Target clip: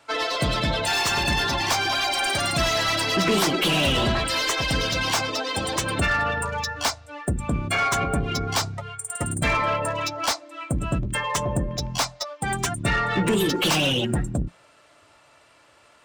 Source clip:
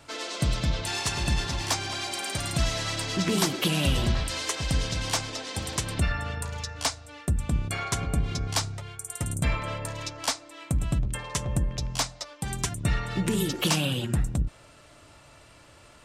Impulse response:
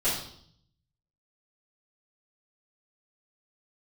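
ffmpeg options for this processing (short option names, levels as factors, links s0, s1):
-filter_complex "[0:a]bandreject=f=175:t=h:w=4,bandreject=f=350:t=h:w=4,bandreject=f=525:t=h:w=4,afftdn=nr=16:nf=-35,asplit=2[s0][s1];[s1]highpass=f=720:p=1,volume=15.8,asoftclip=type=tanh:threshold=0.282[s2];[s0][s2]amix=inputs=2:normalize=0,lowpass=f=1900:p=1,volume=0.501,crystalizer=i=1:c=0"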